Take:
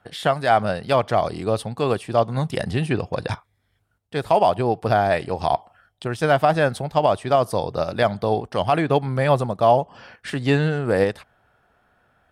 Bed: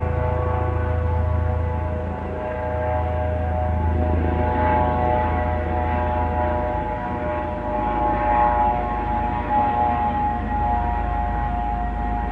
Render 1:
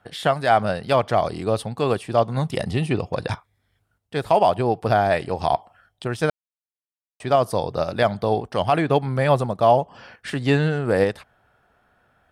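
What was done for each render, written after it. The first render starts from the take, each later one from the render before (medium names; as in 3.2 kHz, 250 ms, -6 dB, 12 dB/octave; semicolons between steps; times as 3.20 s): 2.54–3.12 s: band-stop 1.6 kHz, Q 5.3; 6.30–7.20 s: mute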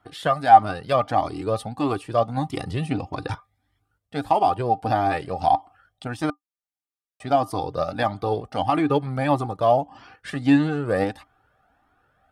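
small resonant body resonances 290/780/1200 Hz, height 13 dB, ringing for 95 ms; Shepard-style flanger rising 1.6 Hz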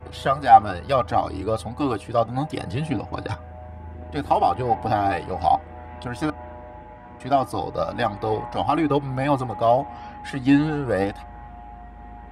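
add bed -17 dB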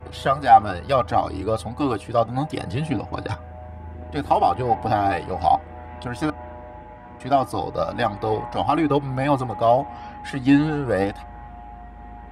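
trim +1 dB; peak limiter -3 dBFS, peak gain reduction 2.5 dB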